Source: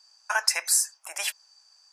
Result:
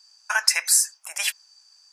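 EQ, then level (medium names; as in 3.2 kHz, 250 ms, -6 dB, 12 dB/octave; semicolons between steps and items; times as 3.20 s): dynamic bell 1.9 kHz, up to +4 dB, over -38 dBFS, Q 0.9; tilt shelf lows -5 dB, about 1.2 kHz; -1.0 dB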